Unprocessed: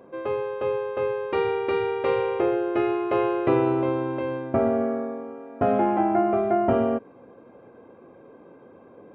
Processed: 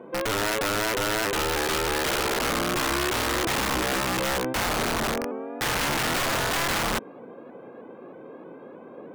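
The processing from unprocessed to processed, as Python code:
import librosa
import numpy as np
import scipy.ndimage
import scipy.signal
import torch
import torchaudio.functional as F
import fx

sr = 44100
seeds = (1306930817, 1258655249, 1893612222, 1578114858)

p1 = scipy.signal.sosfilt(scipy.signal.butter(4, 140.0, 'highpass', fs=sr, output='sos'), x)
p2 = fx.over_compress(p1, sr, threshold_db=-30.0, ratio=-1.0)
p3 = p1 + F.gain(torch.from_numpy(p2), 1.0).numpy()
p4 = (np.mod(10.0 ** (16.5 / 20.0) * p3 + 1.0, 2.0) - 1.0) / 10.0 ** (16.5 / 20.0)
p5 = fx.vibrato_shape(p4, sr, shape='saw_up', rate_hz=3.2, depth_cents=100.0)
y = F.gain(torch.from_numpy(p5), -4.0).numpy()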